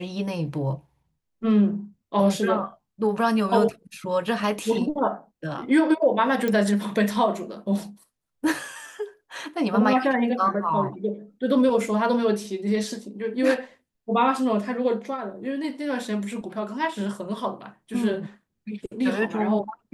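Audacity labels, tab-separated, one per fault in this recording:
6.480000	6.480000	pop -13 dBFS

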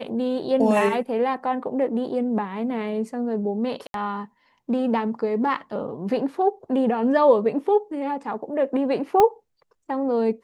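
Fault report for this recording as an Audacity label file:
3.870000	3.940000	dropout 72 ms
9.200000	9.200000	pop -6 dBFS

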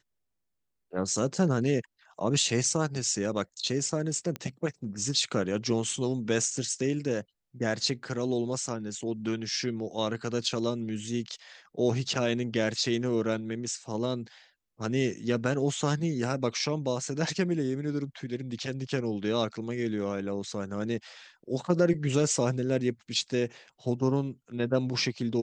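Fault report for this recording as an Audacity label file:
4.360000	4.360000	pop -19 dBFS

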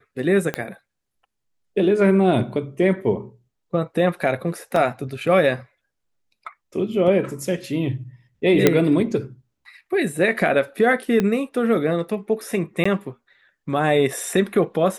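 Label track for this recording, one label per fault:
0.540000	0.540000	pop -10 dBFS
4.760000	4.760000	dropout 2.6 ms
8.670000	8.670000	pop 0 dBFS
11.200000	11.200000	pop -9 dBFS
12.840000	12.860000	dropout 15 ms

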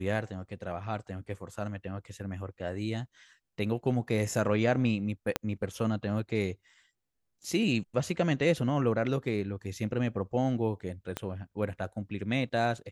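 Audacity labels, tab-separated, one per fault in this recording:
5.360000	5.360000	pop -12 dBFS
11.170000	11.170000	pop -17 dBFS

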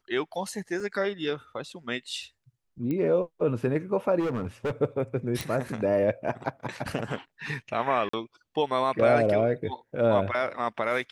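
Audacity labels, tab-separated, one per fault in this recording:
0.800000	0.800000	dropout 2.9 ms
2.910000	2.910000	pop -20 dBFS
4.190000	4.720000	clipped -25.5 dBFS
5.410000	5.410000	pop
8.090000	8.130000	dropout 44 ms

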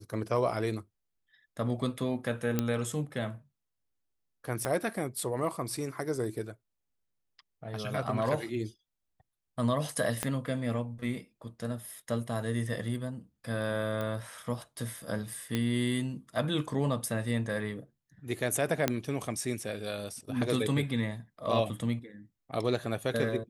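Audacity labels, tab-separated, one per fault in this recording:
2.590000	2.590000	pop -13 dBFS
4.650000	4.650000	pop -16 dBFS
10.230000	10.230000	pop -14 dBFS
14.010000	14.010000	pop -22 dBFS
15.550000	15.550000	pop -16 dBFS
18.880000	18.880000	pop -10 dBFS

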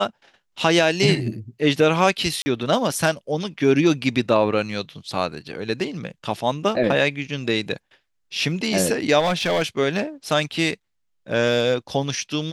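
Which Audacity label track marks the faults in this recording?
2.420000	2.460000	dropout 40 ms
9.190000	9.630000	clipped -17 dBFS

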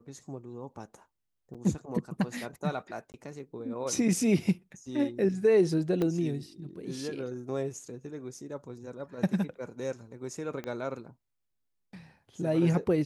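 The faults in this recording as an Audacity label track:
1.540000	1.550000	dropout 6 ms
3.120000	3.140000	dropout 19 ms
6.020000	6.020000	pop -18 dBFS
10.640000	10.640000	pop -24 dBFS

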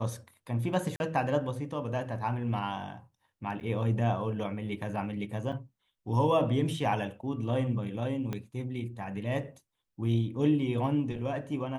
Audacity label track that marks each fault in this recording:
0.960000	1.000000	dropout 41 ms
3.600000	3.610000	dropout 8.8 ms
5.520000	5.530000	dropout 6.8 ms
8.330000	8.330000	pop -21 dBFS

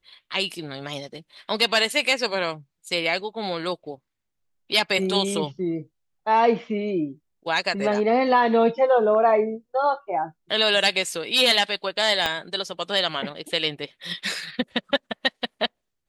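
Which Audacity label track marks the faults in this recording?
12.260000	12.260000	pop -9 dBFS

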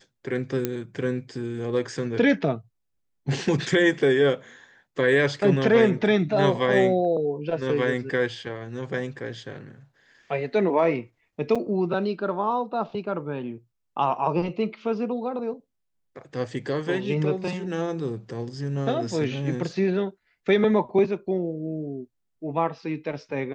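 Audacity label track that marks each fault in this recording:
0.650000	0.650000	pop -11 dBFS
11.550000	11.560000	dropout 5.4 ms

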